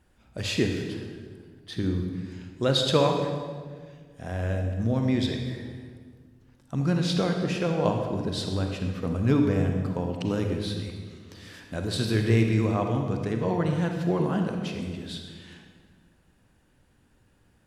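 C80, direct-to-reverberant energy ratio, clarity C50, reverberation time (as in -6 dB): 5.5 dB, 3.0 dB, 4.0 dB, 1.7 s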